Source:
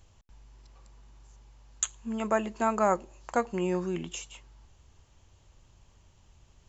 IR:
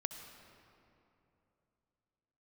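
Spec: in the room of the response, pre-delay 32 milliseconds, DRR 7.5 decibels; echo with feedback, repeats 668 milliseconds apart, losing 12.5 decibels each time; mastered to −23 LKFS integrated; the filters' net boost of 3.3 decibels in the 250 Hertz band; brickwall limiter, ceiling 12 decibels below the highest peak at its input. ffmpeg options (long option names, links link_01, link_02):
-filter_complex "[0:a]equalizer=frequency=250:width_type=o:gain=4.5,alimiter=limit=-22.5dB:level=0:latency=1,aecho=1:1:668|1336|2004:0.237|0.0569|0.0137,asplit=2[link_01][link_02];[1:a]atrim=start_sample=2205,adelay=32[link_03];[link_02][link_03]afir=irnorm=-1:irlink=0,volume=-7dB[link_04];[link_01][link_04]amix=inputs=2:normalize=0,volume=10dB"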